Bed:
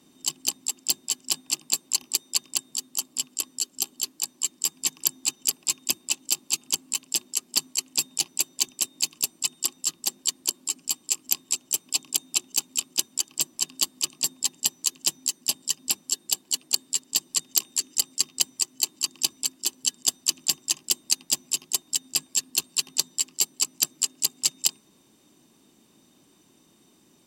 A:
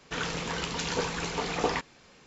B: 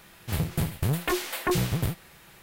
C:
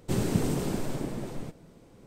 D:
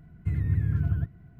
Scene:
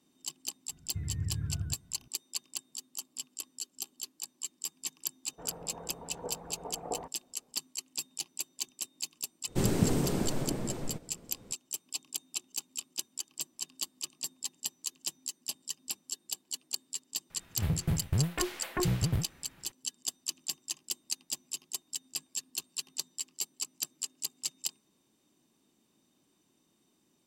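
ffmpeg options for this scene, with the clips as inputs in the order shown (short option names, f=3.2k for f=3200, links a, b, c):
-filter_complex "[0:a]volume=-12dB[a];[1:a]lowpass=f=730:t=q:w=2.4[b];[2:a]bass=f=250:g=6,treble=f=4k:g=-7[c];[4:a]atrim=end=1.39,asetpts=PTS-STARTPTS,volume=-9.5dB,afade=t=in:d=0.004:c=hsin,afade=t=out:st=1.386:d=0.004:c=hsin,adelay=690[d];[b]atrim=end=2.26,asetpts=PTS-STARTPTS,volume=-13.5dB,afade=t=in:d=0.004:c=hsin,afade=t=out:st=2.256:d=0.004:c=hsin,adelay=5270[e];[3:a]atrim=end=2.06,asetpts=PTS-STARTPTS,volume=-0.5dB,afade=t=in:d=0.004:c=hsin,afade=t=out:st=2.056:d=0.004:c=hsin,adelay=9470[f];[c]atrim=end=2.42,asetpts=PTS-STARTPTS,volume=-7.5dB,afade=t=in:d=0.004:c=hsin,afade=t=out:st=2.416:d=0.004:c=hsin,adelay=17300[g];[a][d][e][f][g]amix=inputs=5:normalize=0"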